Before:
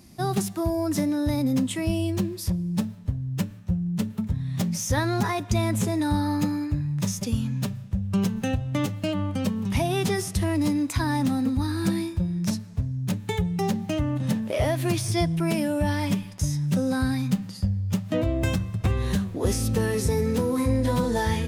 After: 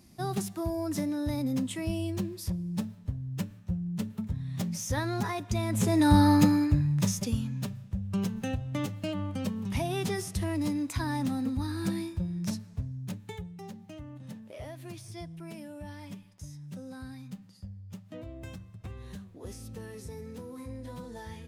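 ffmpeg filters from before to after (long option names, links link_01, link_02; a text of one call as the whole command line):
ffmpeg -i in.wav -af "volume=5dB,afade=type=in:start_time=5.68:duration=0.53:silence=0.266073,afade=type=out:start_time=6.21:duration=1.28:silence=0.266073,afade=type=out:start_time=12.66:duration=0.9:silence=0.251189" out.wav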